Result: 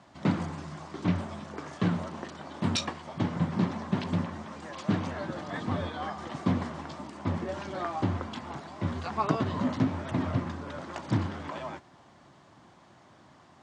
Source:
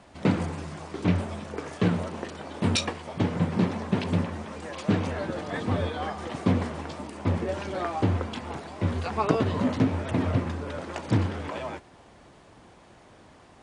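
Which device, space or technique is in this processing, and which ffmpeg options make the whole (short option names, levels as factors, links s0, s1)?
car door speaker: -af "highpass=100,equalizer=f=140:t=q:w=4:g=4,equalizer=f=460:t=q:w=4:g=-8,equalizer=f=1100:t=q:w=4:g=3,equalizer=f=2500:t=q:w=4:g=-4,lowpass=f=7800:w=0.5412,lowpass=f=7800:w=1.3066,volume=0.708"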